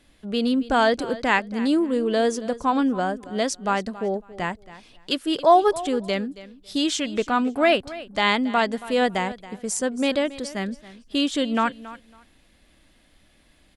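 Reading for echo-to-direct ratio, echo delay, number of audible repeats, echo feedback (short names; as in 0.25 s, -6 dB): -17.0 dB, 0.276 s, 2, 20%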